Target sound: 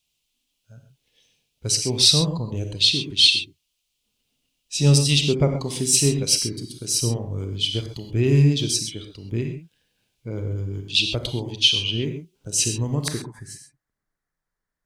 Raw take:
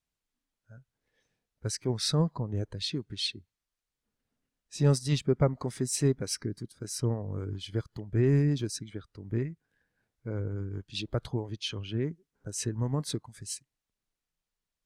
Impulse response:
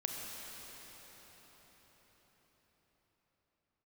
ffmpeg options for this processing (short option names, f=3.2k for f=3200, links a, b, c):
-filter_complex "[0:a]asetnsamples=n=441:p=0,asendcmd='13.08 highshelf g -6.5',highshelf=f=2.2k:t=q:w=3:g=9[a];[1:a]atrim=start_sample=2205,atrim=end_sample=6174[b];[a][b]afir=irnorm=-1:irlink=0,volume=5.5dB"